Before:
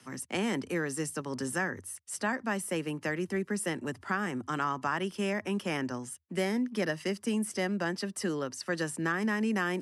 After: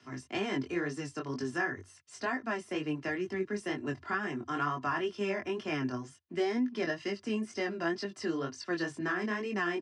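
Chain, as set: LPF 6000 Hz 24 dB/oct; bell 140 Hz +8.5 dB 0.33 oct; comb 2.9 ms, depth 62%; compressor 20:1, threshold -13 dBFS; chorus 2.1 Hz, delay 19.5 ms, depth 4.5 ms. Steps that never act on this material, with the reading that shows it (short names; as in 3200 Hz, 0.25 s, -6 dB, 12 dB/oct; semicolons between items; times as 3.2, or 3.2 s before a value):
compressor, threshold -13 dBFS: input peak -16.5 dBFS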